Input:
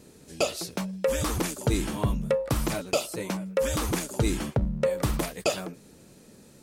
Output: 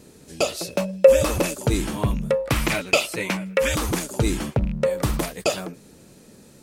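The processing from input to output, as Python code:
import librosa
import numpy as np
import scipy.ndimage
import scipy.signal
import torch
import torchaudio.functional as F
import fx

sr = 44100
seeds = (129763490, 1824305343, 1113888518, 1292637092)

y = fx.rattle_buzz(x, sr, strikes_db=-23.0, level_db=-34.0)
y = fx.small_body(y, sr, hz=(570.0, 2600.0), ring_ms=45, db=15, at=(0.6, 1.56))
y = fx.peak_eq(y, sr, hz=2300.0, db=11.5, octaves=1.2, at=(2.49, 3.75))
y = y * librosa.db_to_amplitude(3.5)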